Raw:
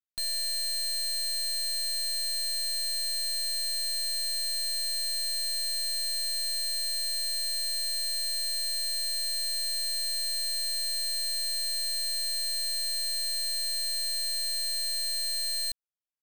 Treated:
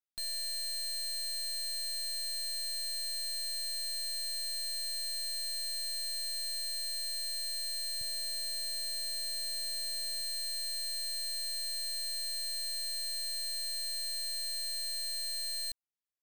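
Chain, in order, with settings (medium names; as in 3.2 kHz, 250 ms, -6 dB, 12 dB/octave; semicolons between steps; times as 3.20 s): 8.01–10.21 s: peaking EQ 120 Hz +14 dB 2.3 oct; trim -6 dB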